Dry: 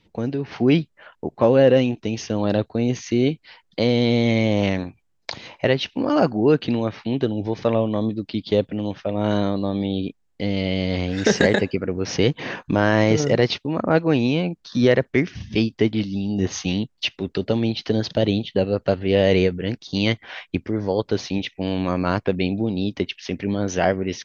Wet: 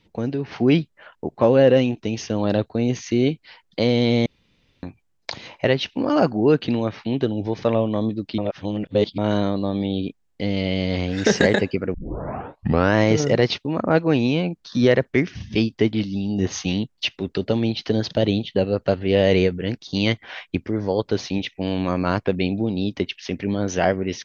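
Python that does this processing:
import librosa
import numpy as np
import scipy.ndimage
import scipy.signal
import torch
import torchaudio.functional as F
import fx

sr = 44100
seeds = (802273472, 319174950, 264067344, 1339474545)

y = fx.edit(x, sr, fx.room_tone_fill(start_s=4.26, length_s=0.57),
    fx.reverse_span(start_s=8.38, length_s=0.8),
    fx.tape_start(start_s=11.94, length_s=1.01), tone=tone)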